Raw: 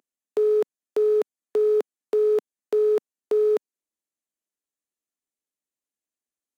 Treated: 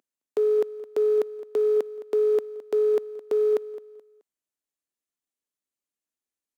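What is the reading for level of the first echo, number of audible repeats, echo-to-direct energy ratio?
−16.0 dB, 2, −15.5 dB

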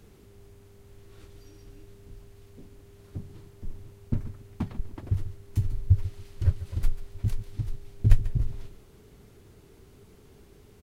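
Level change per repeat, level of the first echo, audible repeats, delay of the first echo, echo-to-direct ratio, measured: −12.5 dB, −14.5 dB, 2, 142 ms, −14.5 dB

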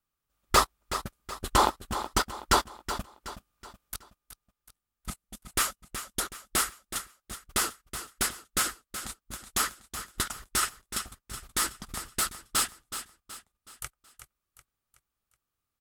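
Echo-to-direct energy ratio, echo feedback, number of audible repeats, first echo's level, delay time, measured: −10.0 dB, 43%, 4, −11.0 dB, 373 ms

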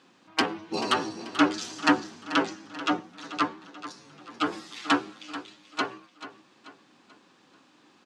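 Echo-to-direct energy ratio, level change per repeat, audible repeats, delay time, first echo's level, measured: −13.0 dB, −7.0 dB, 4, 436 ms, −14.0 dB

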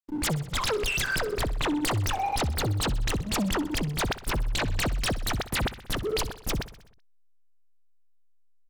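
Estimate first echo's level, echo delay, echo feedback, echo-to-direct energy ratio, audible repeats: −15.5 dB, 63 ms, 59%, −13.5 dB, 5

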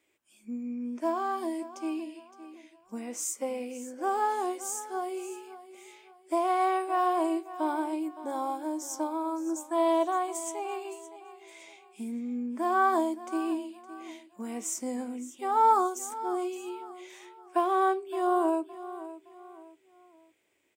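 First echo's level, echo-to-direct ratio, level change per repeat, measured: −15.0 dB, −14.5 dB, −9.0 dB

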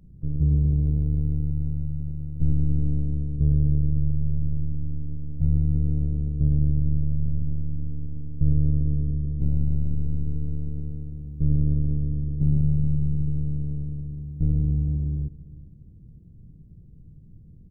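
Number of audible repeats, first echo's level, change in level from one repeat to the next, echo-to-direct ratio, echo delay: 2, −20.5 dB, −12.0 dB, −20.0 dB, 399 ms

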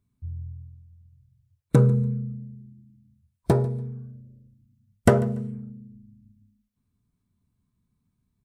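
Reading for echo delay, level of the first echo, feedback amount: 144 ms, −21.5 dB, 25%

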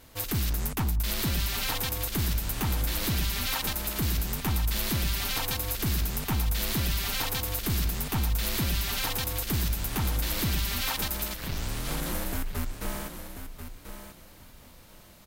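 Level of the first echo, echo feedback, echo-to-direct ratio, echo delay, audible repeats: −9.5 dB, 20%, −9.5 dB, 1,038 ms, 2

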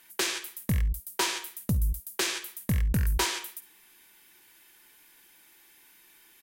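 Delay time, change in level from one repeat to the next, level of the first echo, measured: 53 ms, repeats not evenly spaced, −18.5 dB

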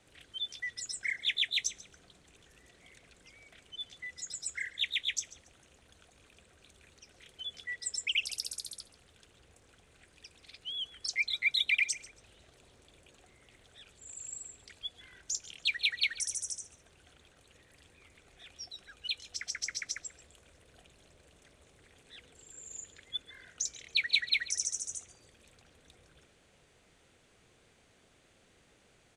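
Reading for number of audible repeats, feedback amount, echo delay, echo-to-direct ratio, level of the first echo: 2, 27%, 139 ms, −18.0 dB, −18.5 dB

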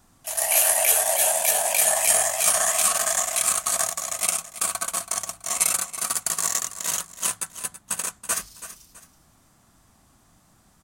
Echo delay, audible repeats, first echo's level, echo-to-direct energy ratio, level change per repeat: 328 ms, 2, −13.5 dB, −13.0 dB, −9.5 dB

